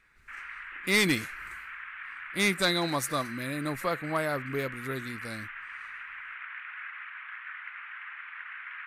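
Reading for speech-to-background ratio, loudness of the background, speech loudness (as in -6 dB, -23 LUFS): 11.0 dB, -40.5 LUFS, -29.5 LUFS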